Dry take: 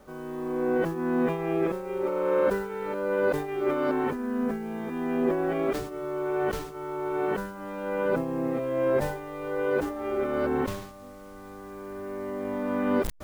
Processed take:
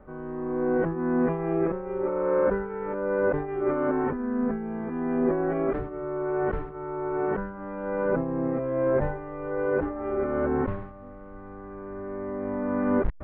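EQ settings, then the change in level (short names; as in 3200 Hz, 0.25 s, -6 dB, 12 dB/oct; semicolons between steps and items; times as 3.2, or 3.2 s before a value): LPF 1900 Hz 24 dB/oct; low shelf 120 Hz +8.5 dB; 0.0 dB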